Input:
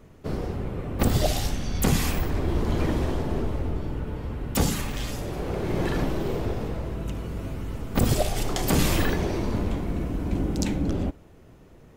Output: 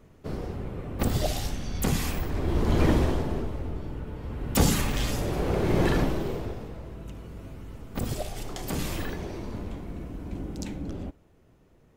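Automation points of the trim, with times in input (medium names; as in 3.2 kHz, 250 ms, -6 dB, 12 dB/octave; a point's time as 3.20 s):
2.28 s -4 dB
2.90 s +4 dB
3.51 s -5 dB
4.17 s -5 dB
4.71 s +3 dB
5.90 s +3 dB
6.67 s -9 dB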